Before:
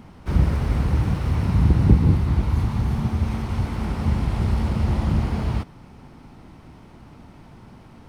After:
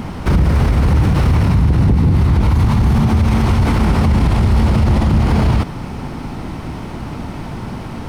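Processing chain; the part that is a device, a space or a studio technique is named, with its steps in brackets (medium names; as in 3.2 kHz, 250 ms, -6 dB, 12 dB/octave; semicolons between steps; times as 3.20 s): loud club master (compression 2:1, threshold -20 dBFS, peak gain reduction 7.5 dB; hard clipper -12.5 dBFS, distortion -27 dB; loudness maximiser +24 dB); trim -5 dB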